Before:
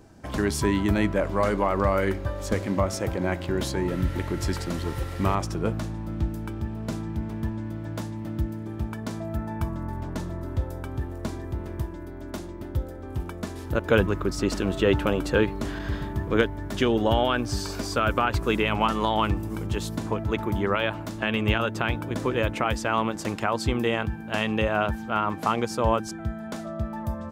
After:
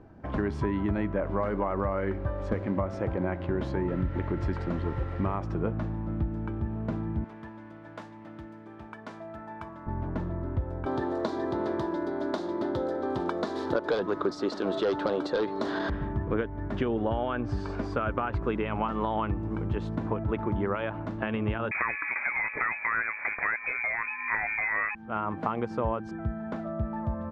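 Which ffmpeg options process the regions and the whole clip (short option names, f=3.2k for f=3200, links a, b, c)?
-filter_complex "[0:a]asettb=1/sr,asplit=3[a][b][c];[a]atrim=end=7.244[d];[b]atrim=start=7.24:end=9.87,asetpts=PTS-STARTPTS,afade=t=in:d=0.004:c=qsin,afade=t=out:st=2.626:d=0.004:c=qsin,highshelf=f=5.4k:g=11,acrusher=bits=9:mode=log:mix=0:aa=0.000001,highpass=f=1k:p=1[e];[c]atrim=start=9.866[f];[d][e]acrossfade=d=0.004:c1=hsin:c2=qsin[g];[g][f]acrossfade=d=0.004:c1=qsin:c2=hsin,asettb=1/sr,asplit=3[h][i][j];[h]atrim=end=10.864[k];[i]atrim=start=10.86:end=15.9,asetpts=PTS-STARTPTS,afade=t=in:d=0.004:c=qsin,afade=t=out:st=5.036:d=0.004:c=qsin,highpass=350,aeval=exprs='0.398*sin(PI/2*2.82*val(0)/0.398)':c=same,highshelf=f=3.2k:t=q:w=3:g=7[l];[j]atrim=start=15.896[m];[k][l]acrossfade=d=0.004:c1=hsin:c2=qsin[n];[n][m]acrossfade=d=0.004:c1=qsin:c2=hsin,asettb=1/sr,asplit=3[o][p][q];[o]atrim=end=21.714[r];[p]atrim=start=21.71:end=24.95,asetpts=PTS-STARTPTS,afade=t=in:d=0.004:c=qsin,afade=t=out:st=3.236:d=0.004:c=qsin,equalizer=f=720:w=0.53:g=9.5,aeval=exprs='0.841*sin(PI/2*2.51*val(0)/0.841)':c=same,lowpass=f=2.2k:t=q:w=0.5098,lowpass=f=2.2k:t=q:w=0.6013,lowpass=f=2.2k:t=q:w=0.9,lowpass=f=2.2k:t=q:w=2.563,afreqshift=-2600[s];[q]atrim=start=24.946[t];[r][s]acrossfade=d=0.004:c1=hsin:c2=qsin[u];[u][t]acrossfade=d=0.004:c1=qsin:c2=hsin,acompressor=threshold=-24dB:ratio=6,lowpass=1.7k"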